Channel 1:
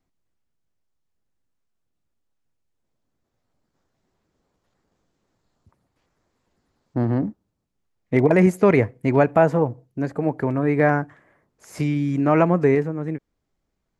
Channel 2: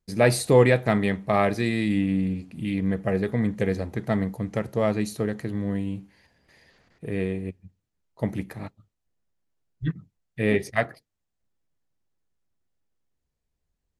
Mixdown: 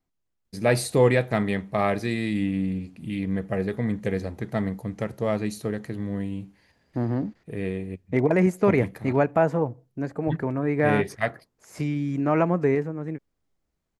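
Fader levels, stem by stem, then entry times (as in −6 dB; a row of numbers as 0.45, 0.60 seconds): −4.5, −2.0 decibels; 0.00, 0.45 seconds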